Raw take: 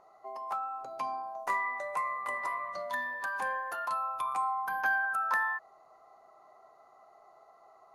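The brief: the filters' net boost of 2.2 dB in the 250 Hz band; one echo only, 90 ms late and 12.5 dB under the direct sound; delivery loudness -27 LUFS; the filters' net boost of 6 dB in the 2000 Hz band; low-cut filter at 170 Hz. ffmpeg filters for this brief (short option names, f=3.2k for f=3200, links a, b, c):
-af "highpass=170,equalizer=f=250:t=o:g=3.5,equalizer=f=2k:t=o:g=7.5,aecho=1:1:90:0.237,volume=1.5dB"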